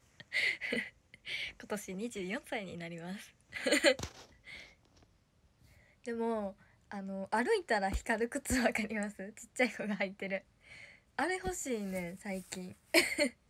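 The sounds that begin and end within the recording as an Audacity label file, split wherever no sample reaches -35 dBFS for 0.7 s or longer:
6.060000	10.380000	sound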